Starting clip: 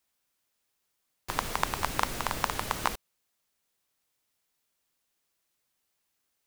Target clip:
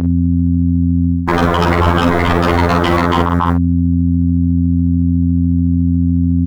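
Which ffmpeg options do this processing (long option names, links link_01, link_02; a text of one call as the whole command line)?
ffmpeg -i in.wav -filter_complex "[0:a]lowshelf=frequency=170:gain=11.5,agate=range=-33dB:threshold=-26dB:ratio=3:detection=peak,firequalizer=gain_entry='entry(1300,0);entry(2900,-21);entry(15000,-11)':delay=0.05:min_phase=1,asplit=2[link_01][link_02];[link_02]aecho=0:1:281|562:0.178|0.0391[link_03];[link_01][link_03]amix=inputs=2:normalize=0,aeval=exprs='val(0)+0.00251*(sin(2*PI*50*n/s)+sin(2*PI*2*50*n/s)/2+sin(2*PI*3*50*n/s)/3+sin(2*PI*4*50*n/s)/4+sin(2*PI*5*50*n/s)/5)':channel_layout=same,areverse,acompressor=threshold=-37dB:ratio=10,areverse,aeval=exprs='0.015*(abs(mod(val(0)/0.015+3,4)-2)-1)':channel_layout=same,afftfilt=real='hypot(re,im)*cos(PI*b)':imag='0':win_size=2048:overlap=0.75,asplit=2[link_04][link_05];[link_05]highpass=frequency=720:poles=1,volume=31dB,asoftclip=type=tanh:threshold=-24dB[link_06];[link_04][link_06]amix=inputs=2:normalize=0,lowpass=frequency=1400:poles=1,volume=-6dB,asplit=2[link_07][link_08];[link_08]adelay=47,volume=-6.5dB[link_09];[link_07][link_09]amix=inputs=2:normalize=0,alimiter=level_in=35dB:limit=-1dB:release=50:level=0:latency=1,volume=-1dB" out.wav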